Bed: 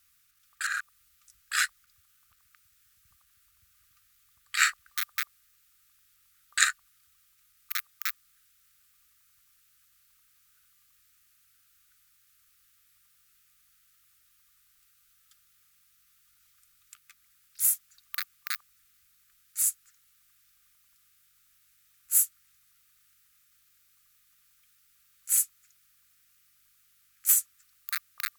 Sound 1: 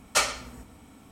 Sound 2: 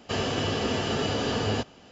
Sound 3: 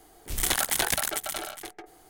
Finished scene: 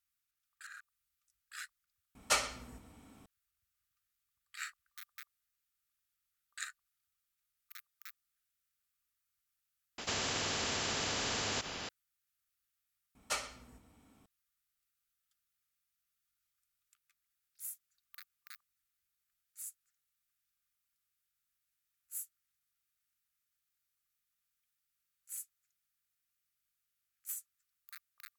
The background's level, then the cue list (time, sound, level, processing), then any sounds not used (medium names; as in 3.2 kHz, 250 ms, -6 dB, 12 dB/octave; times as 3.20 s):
bed -20 dB
2.15 s: add 1 -7 dB
9.98 s: replace with 2 -6.5 dB + spectrum-flattening compressor 4:1
13.15 s: add 1 -13.5 dB
not used: 3